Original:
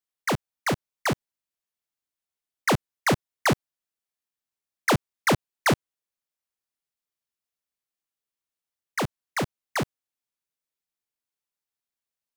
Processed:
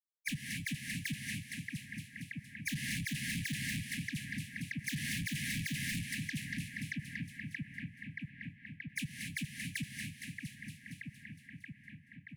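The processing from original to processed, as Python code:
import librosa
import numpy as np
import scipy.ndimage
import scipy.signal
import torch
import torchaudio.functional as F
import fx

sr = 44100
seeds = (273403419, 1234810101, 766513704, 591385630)

p1 = fx.bin_expand(x, sr, power=3.0)
p2 = p1 + fx.echo_split(p1, sr, split_hz=2000.0, low_ms=628, high_ms=231, feedback_pct=52, wet_db=-11.0, dry=0)
p3 = fx.vibrato(p2, sr, rate_hz=1.6, depth_cents=14.0)
p4 = fx.graphic_eq_15(p3, sr, hz=(160, 2500, 10000), db=(7, 11, 11))
p5 = fx.rev_gated(p4, sr, seeds[0], gate_ms=300, shape='rising', drr_db=7.5)
p6 = 10.0 ** (-35.5 / 20.0) * np.tanh(p5 / 10.0 ** (-35.5 / 20.0))
p7 = fx.brickwall_bandstop(p6, sr, low_hz=290.0, high_hz=1600.0)
p8 = fx.band_squash(p7, sr, depth_pct=70)
y = p8 * librosa.db_to_amplitude(3.0)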